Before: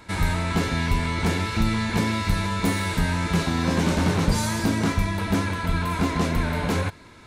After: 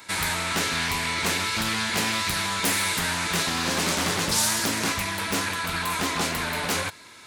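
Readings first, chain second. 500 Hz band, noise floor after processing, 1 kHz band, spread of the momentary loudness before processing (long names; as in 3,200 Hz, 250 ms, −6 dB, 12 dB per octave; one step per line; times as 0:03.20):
−3.0 dB, −47 dBFS, 0.0 dB, 3 LU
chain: high-pass filter 40 Hz
spectral tilt +3.5 dB per octave
highs frequency-modulated by the lows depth 0.57 ms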